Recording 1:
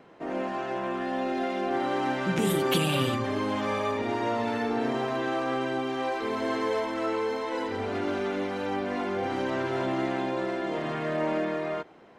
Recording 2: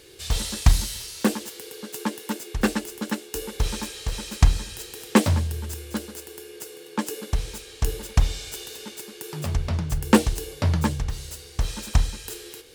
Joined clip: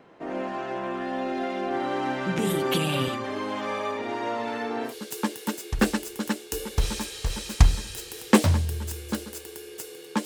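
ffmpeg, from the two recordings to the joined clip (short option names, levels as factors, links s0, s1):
-filter_complex "[0:a]asettb=1/sr,asplit=3[s0][s1][s2];[s0]atrim=end=3.084[s3];[s1]atrim=start=3.08:end=4.95,asetpts=PTS-STARTPTS,afade=t=in:d=0.004:c=qsin,afade=t=out:st=1.866:d=0.004:c=qsin,highpass=f=300:p=1[s4];[s2]atrim=start=4.946[s5];[s3][s4]acrossfade=d=0.004:c1=hsin:c2=qsin[s6];[s6][s5]acrossfade=d=0.004:c1=qsin:c2=hsin,apad=whole_dur=10.25,atrim=end=10.25,atrim=end=4.95,asetpts=PTS-STARTPTS[s7];[1:a]atrim=start=1.65:end=7.07,asetpts=PTS-STARTPTS[s8];[s7][s8]acrossfade=d=0.12:c1=tri:c2=tri"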